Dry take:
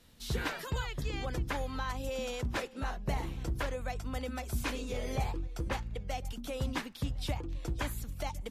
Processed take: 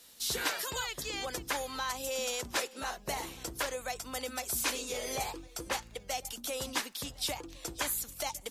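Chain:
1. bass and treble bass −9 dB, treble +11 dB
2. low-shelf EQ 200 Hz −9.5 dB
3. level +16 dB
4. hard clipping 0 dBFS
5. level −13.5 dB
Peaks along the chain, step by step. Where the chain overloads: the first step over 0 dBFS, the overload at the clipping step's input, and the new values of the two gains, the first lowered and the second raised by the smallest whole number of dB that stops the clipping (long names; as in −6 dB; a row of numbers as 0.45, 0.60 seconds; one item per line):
−19.0, −20.0, −4.0, −4.0, −17.5 dBFS
no step passes full scale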